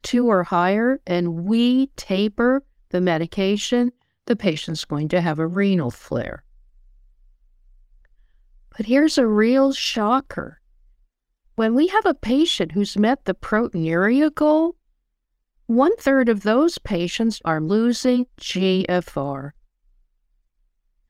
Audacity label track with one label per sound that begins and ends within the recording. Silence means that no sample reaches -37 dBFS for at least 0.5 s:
8.720000	10.500000	sound
11.580000	14.710000	sound
15.690000	19.500000	sound